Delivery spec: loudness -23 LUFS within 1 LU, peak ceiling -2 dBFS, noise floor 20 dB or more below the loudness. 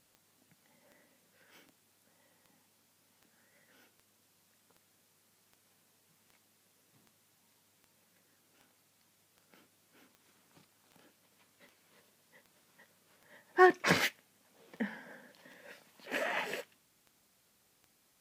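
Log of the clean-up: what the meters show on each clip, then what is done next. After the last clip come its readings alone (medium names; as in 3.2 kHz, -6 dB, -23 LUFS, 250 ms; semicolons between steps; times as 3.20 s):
clicks found 24; loudness -31.0 LUFS; peak level -11.0 dBFS; loudness target -23.0 LUFS
-> de-click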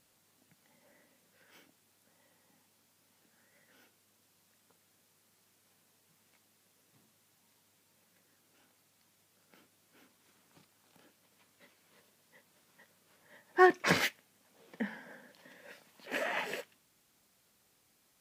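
clicks found 0; loudness -31.0 LUFS; peak level -11.0 dBFS; loudness target -23.0 LUFS
-> trim +8 dB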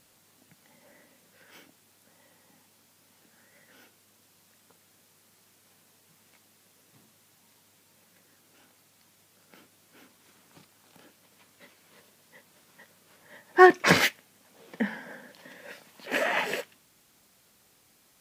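loudness -23.0 LUFS; peak level -3.0 dBFS; noise floor -63 dBFS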